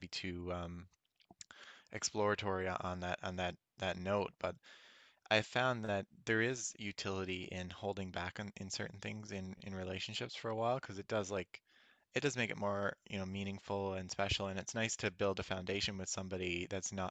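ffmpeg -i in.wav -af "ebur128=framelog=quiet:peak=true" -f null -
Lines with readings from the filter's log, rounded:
Integrated loudness:
  I:         -39.6 LUFS
  Threshold: -50.1 LUFS
Loudness range:
  LRA:         4.4 LU
  Threshold: -60.0 LUFS
  LRA low:   -42.4 LUFS
  LRA high:  -38.0 LUFS
True peak:
  Peak:      -14.5 dBFS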